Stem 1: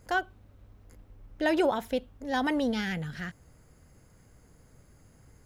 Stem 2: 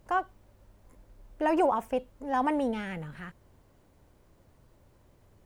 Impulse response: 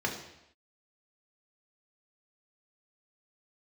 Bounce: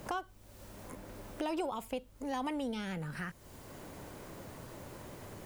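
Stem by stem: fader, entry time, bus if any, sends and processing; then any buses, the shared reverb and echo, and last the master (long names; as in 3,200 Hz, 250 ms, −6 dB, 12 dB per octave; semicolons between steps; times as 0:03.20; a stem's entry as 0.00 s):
−18.0 dB, 0.00 s, no send, no processing
+1.0 dB, 0.00 s, no send, downward compressor 1.5 to 1, threshold −53 dBFS, peak gain reduction 11.5 dB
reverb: not used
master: high-shelf EQ 2,800 Hz +10.5 dB; multiband upward and downward compressor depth 70%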